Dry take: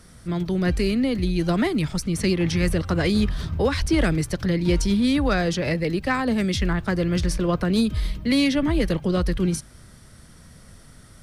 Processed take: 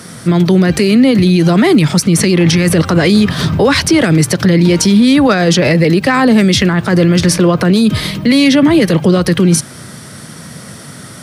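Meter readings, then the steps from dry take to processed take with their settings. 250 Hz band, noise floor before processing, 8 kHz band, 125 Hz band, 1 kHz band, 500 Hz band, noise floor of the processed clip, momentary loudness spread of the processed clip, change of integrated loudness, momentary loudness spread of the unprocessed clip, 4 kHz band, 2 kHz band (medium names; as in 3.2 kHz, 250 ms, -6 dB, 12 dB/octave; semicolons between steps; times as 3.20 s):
+13.0 dB, -48 dBFS, +16.5 dB, +12.5 dB, +12.5 dB, +12.5 dB, -32 dBFS, 4 LU, +13.0 dB, 4 LU, +13.5 dB, +12.5 dB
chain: high-pass 120 Hz 24 dB/octave; loudness maximiser +20.5 dB; trim -1 dB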